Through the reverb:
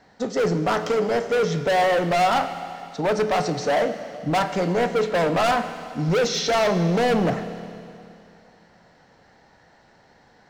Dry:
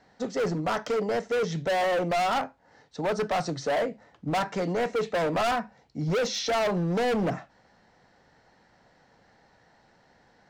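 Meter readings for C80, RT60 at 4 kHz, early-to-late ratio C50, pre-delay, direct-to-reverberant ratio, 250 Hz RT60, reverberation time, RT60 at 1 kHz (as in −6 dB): 11.0 dB, 2.6 s, 10.0 dB, 14 ms, 9.0 dB, 2.6 s, 2.6 s, 2.6 s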